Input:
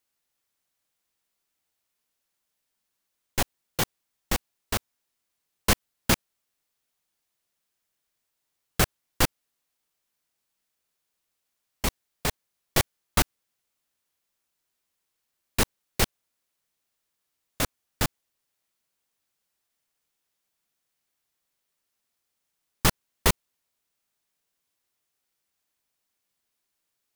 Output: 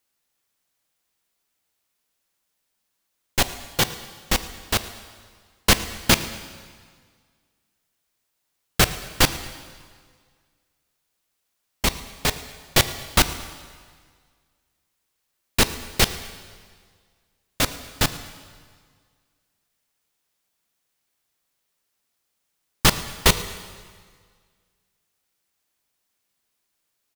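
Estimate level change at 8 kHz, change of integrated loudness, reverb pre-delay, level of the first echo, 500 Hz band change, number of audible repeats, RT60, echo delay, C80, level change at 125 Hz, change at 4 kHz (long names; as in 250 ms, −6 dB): +6.0 dB, +6.0 dB, 6 ms, −21.0 dB, +4.5 dB, 1, 1.8 s, 111 ms, 13.5 dB, +4.0 dB, +8.5 dB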